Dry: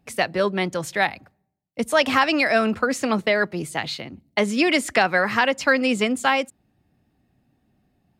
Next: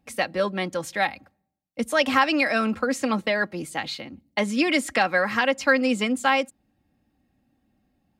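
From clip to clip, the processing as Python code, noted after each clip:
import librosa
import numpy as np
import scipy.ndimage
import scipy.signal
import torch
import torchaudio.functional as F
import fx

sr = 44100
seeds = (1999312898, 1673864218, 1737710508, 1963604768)

y = x + 0.43 * np.pad(x, (int(3.7 * sr / 1000.0), 0))[:len(x)]
y = F.gain(torch.from_numpy(y), -3.5).numpy()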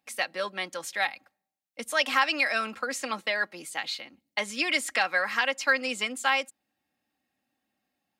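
y = fx.highpass(x, sr, hz=1400.0, slope=6)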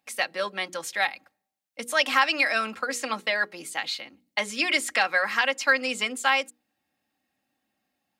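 y = fx.hum_notches(x, sr, base_hz=60, count=8)
y = F.gain(torch.from_numpy(y), 2.5).numpy()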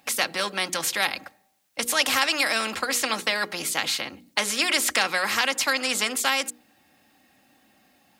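y = fx.spectral_comp(x, sr, ratio=2.0)
y = F.gain(torch.from_numpy(y), 1.5).numpy()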